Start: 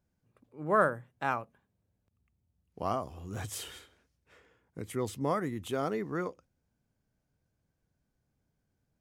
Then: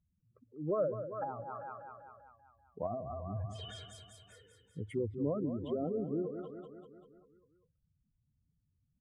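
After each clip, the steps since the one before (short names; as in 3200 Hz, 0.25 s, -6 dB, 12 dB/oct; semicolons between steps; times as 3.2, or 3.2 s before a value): spectral contrast raised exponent 2.7; feedback echo 0.195 s, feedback 58%, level -10 dB; treble ducked by the level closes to 480 Hz, closed at -30.5 dBFS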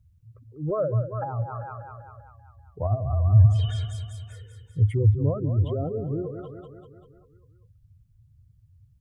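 resonant low shelf 150 Hz +11.5 dB, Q 3; gain +7 dB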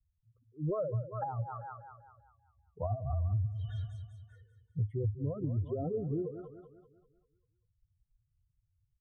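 per-bin expansion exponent 1.5; compressor 16:1, threshold -29 dBFS, peak gain reduction 18 dB; running mean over 18 samples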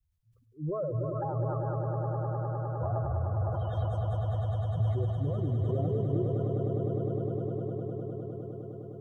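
swelling echo 0.102 s, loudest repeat 8, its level -8 dB; sustainer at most 27 dB/s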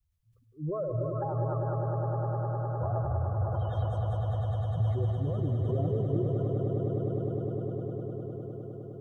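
reverb RT60 0.35 s, pre-delay 0.152 s, DRR 9 dB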